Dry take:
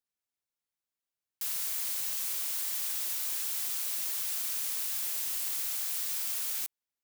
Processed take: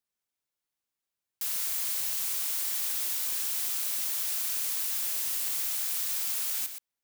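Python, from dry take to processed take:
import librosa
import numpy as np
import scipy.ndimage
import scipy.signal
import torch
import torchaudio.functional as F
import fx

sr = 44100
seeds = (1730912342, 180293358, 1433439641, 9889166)

y = x + 10.0 ** (-9.0 / 20.0) * np.pad(x, (int(122 * sr / 1000.0), 0))[:len(x)]
y = y * 10.0 ** (2.0 / 20.0)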